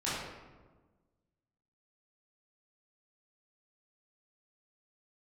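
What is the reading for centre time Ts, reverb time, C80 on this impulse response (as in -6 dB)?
88 ms, 1.3 s, 1.5 dB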